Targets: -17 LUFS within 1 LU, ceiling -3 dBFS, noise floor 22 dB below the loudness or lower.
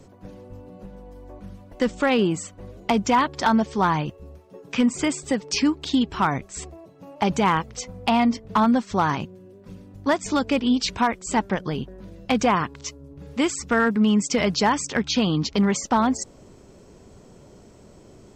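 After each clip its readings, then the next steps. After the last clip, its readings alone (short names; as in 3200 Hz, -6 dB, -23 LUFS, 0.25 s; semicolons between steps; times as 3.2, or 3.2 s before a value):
clipped 0.4%; flat tops at -12.0 dBFS; loudness -23.0 LUFS; peak -12.0 dBFS; loudness target -17.0 LUFS
-> clip repair -12 dBFS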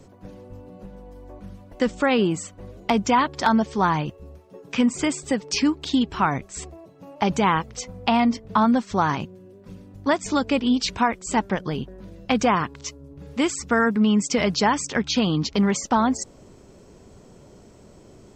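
clipped 0.0%; loudness -22.5 LUFS; peak -6.0 dBFS; loudness target -17.0 LUFS
-> gain +5.5 dB; limiter -3 dBFS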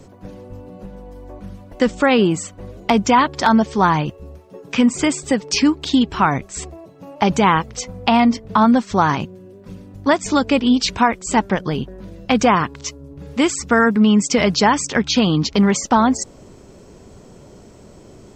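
loudness -17.0 LUFS; peak -3.0 dBFS; noise floor -44 dBFS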